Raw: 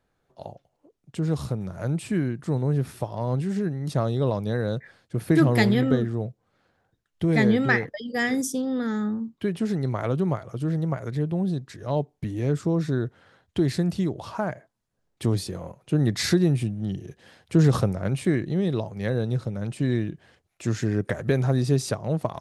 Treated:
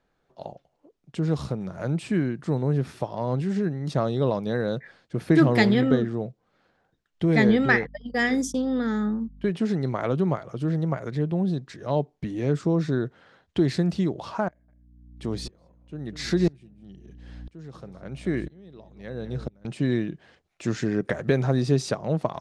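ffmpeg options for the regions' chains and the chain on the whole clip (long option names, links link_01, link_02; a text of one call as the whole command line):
ffmpeg -i in.wav -filter_complex "[0:a]asettb=1/sr,asplit=3[link_01][link_02][link_03];[link_01]atrim=end=7.494[link_04];[link_02]atrim=start=7.49:end=9.5,asetpts=PTS-STARTPTS,afade=type=in:duration=0.004:curve=qsin,afade=type=out:start_time=2.006:duration=0.004:curve=qsin,agate=range=-27dB:threshold=-34dB:ratio=16:release=100:detection=peak,acompressor=mode=upward:threshold=-37dB:ratio=2.5:attack=3.2:release=140:knee=2.83:detection=peak,aeval=exprs='val(0)+0.00501*(sin(2*PI*50*n/s)+sin(2*PI*2*50*n/s)/2+sin(2*PI*3*50*n/s)/3+sin(2*PI*4*50*n/s)/4+sin(2*PI*5*50*n/s)/5)':channel_layout=same[link_05];[link_03]atrim=start=9.496[link_06];[link_04][link_05]acrossfade=duration=0.004:curve1=hsin:curve2=qsin[link_07];[link_07][link_06]acrossfade=duration=0.004:curve1=qsin:curve2=hsin,asettb=1/sr,asplit=3[link_08][link_09][link_10];[link_08]atrim=end=14.484[link_11];[link_09]atrim=start=14.48:end=19.65,asetpts=PTS-STARTPTS,afade=type=in:duration=0.004:curve=qsin,afade=type=out:start_time=5.166:duration=0.004:curve=qsin,aeval=exprs='val(0)+0.0158*(sin(2*PI*60*n/s)+sin(2*PI*2*60*n/s)/2+sin(2*PI*3*60*n/s)/3+sin(2*PI*4*60*n/s)/4+sin(2*PI*5*60*n/s)/5)':channel_layout=same,aecho=1:1:202:0.133,atrim=end_sample=227997,aeval=exprs='val(0)*pow(10,-29*if(lt(mod(-1*n/s,1),2*abs(-1)/1000),1-mod(-1*n/s,1)/(2*abs(-1)/1000),(mod(-1*n/s,1)-2*abs(-1)/1000)/(1-2*abs(-1)/1000))/20)':channel_layout=same[link_12];[link_10]atrim=start=19.646[link_13];[link_11][link_12]acrossfade=duration=0.004:curve1=hsin:curve2=qsin[link_14];[link_14][link_13]acrossfade=duration=0.004:curve1=qsin:curve2=hsin,lowpass=6300,equalizer=frequency=100:width_type=o:width=0.47:gain=-11,volume=1.5dB" out.wav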